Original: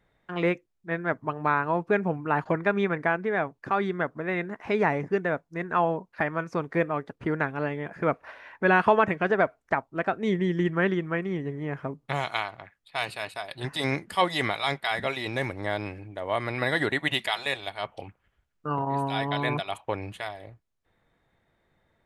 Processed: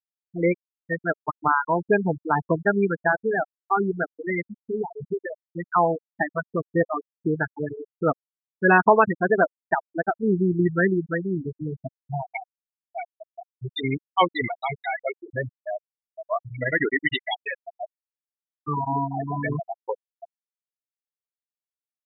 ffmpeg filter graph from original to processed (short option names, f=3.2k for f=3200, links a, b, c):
-filter_complex "[0:a]asettb=1/sr,asplit=3[a][b][c];[a]atrim=end=4.514[d];[b]atrim=start=4.51:end=5.48,asetpts=PTS-STARTPTS,afade=t=in:d=0.004:c=qsin,afade=t=out:st=0.966:d=0.004:c=qsin,acompressor=threshold=-28dB:ratio=2.5:attack=3.2:release=140:knee=1:detection=peak,aeval=exprs='val(0)+0.00447*(sin(2*PI*60*n/s)+sin(2*PI*2*60*n/s)/2+sin(2*PI*3*60*n/s)/3+sin(2*PI*4*60*n/s)/4+sin(2*PI*5*60*n/s)/5)':c=same[e];[c]atrim=start=5.476[f];[d][e]acrossfade=d=0.004:c1=hsin:c2=qsin[g];[g][f]acrossfade=d=0.004:c1=qsin:c2=hsin,bandreject=f=580:w=12,afftfilt=real='re*gte(hypot(re,im),0.178)':imag='im*gte(hypot(re,im),0.178)':win_size=1024:overlap=0.75,highshelf=f=4.2k:g=6.5,volume=4.5dB"